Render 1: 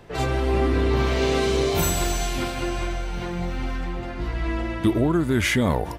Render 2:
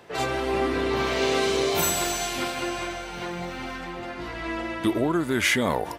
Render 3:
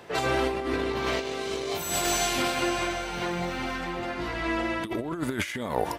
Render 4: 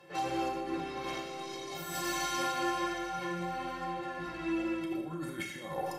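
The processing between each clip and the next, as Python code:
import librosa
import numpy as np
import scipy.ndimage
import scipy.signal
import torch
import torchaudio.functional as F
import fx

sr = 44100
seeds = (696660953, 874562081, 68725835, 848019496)

y1 = fx.highpass(x, sr, hz=420.0, slope=6)
y1 = F.gain(torch.from_numpy(y1), 1.5).numpy()
y2 = fx.over_compress(y1, sr, threshold_db=-27.0, ratio=-0.5)
y3 = fx.stiff_resonator(y2, sr, f0_hz=160.0, decay_s=0.2, stiffness=0.03)
y3 = fx.rev_schroeder(y3, sr, rt60_s=0.77, comb_ms=27, drr_db=3.0)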